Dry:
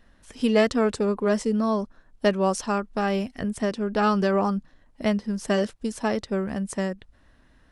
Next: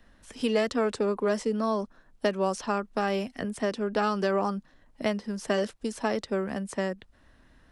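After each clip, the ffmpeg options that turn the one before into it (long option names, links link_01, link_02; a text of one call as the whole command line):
ffmpeg -i in.wav -filter_complex "[0:a]acrossover=split=130|280|4800[link_01][link_02][link_03][link_04];[link_01]acompressor=threshold=-54dB:ratio=4[link_05];[link_02]acompressor=threshold=-37dB:ratio=4[link_06];[link_03]acompressor=threshold=-23dB:ratio=4[link_07];[link_04]acompressor=threshold=-44dB:ratio=4[link_08];[link_05][link_06][link_07][link_08]amix=inputs=4:normalize=0" out.wav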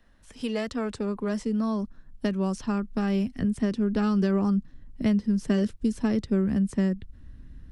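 ffmpeg -i in.wav -af "asubboost=boost=11:cutoff=210,volume=-4dB" out.wav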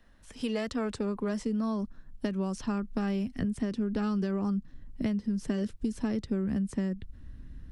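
ffmpeg -i in.wav -af "acompressor=threshold=-27dB:ratio=6" out.wav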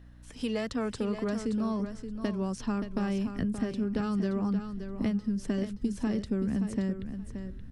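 ffmpeg -i in.wav -af "aeval=exprs='val(0)+0.00282*(sin(2*PI*60*n/s)+sin(2*PI*2*60*n/s)/2+sin(2*PI*3*60*n/s)/3+sin(2*PI*4*60*n/s)/4+sin(2*PI*5*60*n/s)/5)':channel_layout=same,aecho=1:1:575|1150|1725:0.355|0.0603|0.0103" out.wav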